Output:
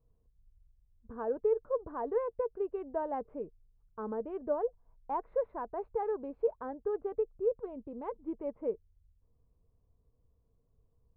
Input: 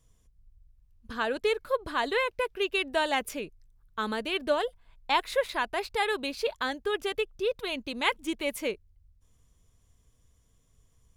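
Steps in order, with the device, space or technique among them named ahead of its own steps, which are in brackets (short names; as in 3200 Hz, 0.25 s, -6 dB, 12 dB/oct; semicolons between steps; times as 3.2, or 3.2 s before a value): under water (LPF 1000 Hz 24 dB/oct; bell 460 Hz +7 dB 0.26 oct); 7.66–8.16 bell 1500 Hz -5.5 dB 2.3 oct; gain -6 dB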